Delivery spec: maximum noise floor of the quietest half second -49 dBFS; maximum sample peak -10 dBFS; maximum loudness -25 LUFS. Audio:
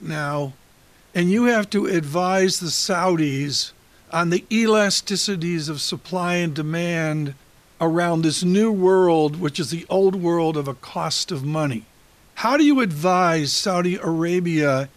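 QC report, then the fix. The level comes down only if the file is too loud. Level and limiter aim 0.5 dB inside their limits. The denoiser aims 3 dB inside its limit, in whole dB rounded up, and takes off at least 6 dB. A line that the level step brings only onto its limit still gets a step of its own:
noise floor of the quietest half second -53 dBFS: OK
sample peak -5.5 dBFS: fail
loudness -20.5 LUFS: fail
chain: gain -5 dB

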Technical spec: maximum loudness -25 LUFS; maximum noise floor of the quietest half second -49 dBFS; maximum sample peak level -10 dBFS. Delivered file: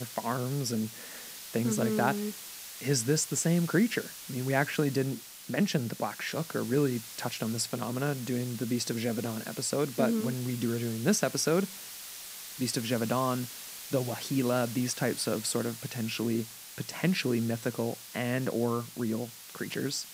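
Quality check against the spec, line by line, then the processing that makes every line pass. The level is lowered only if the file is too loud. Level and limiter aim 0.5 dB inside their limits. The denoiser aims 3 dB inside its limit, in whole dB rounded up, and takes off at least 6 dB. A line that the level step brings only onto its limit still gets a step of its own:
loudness -31.0 LUFS: OK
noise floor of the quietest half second -44 dBFS: fail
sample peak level -11.0 dBFS: OK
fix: denoiser 8 dB, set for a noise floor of -44 dBFS

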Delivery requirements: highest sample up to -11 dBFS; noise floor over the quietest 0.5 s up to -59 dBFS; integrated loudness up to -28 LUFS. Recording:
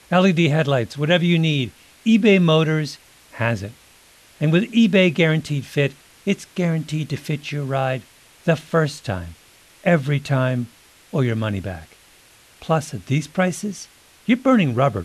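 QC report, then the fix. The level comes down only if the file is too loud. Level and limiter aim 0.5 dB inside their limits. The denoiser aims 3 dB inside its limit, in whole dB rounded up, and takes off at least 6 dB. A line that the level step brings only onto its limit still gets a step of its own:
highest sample -5.5 dBFS: fail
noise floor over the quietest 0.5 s -51 dBFS: fail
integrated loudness -20.5 LUFS: fail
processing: denoiser 6 dB, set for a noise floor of -51 dBFS; gain -8 dB

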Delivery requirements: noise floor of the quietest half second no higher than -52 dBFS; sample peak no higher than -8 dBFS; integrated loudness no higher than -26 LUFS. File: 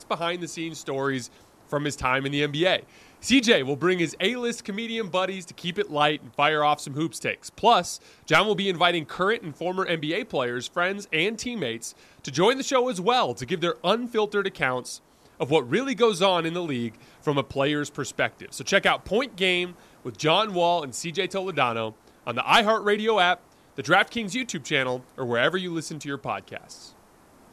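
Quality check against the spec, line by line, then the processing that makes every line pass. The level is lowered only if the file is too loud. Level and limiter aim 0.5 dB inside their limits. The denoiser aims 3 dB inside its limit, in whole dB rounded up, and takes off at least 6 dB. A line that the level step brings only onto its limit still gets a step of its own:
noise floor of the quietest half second -55 dBFS: OK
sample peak -5.5 dBFS: fail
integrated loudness -24.5 LUFS: fail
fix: gain -2 dB; limiter -8.5 dBFS

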